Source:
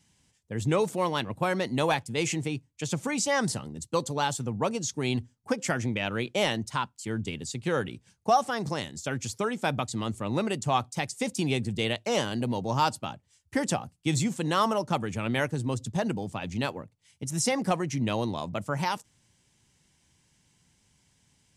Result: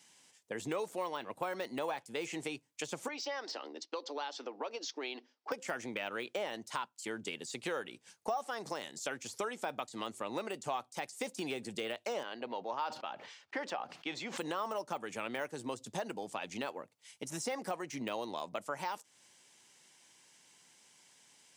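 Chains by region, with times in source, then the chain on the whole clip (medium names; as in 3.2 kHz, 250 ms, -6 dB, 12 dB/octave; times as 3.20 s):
3.08–5.52 s: Chebyshev band-pass 280–5300 Hz, order 4 + compression 2:1, threshold -39 dBFS
12.23–14.38 s: high-pass 530 Hz 6 dB/octave + distance through air 250 m + decay stretcher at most 86 dB/s
whole clip: de-esser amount 100%; high-pass 430 Hz 12 dB/octave; compression 3:1, threshold -44 dBFS; trim +5.5 dB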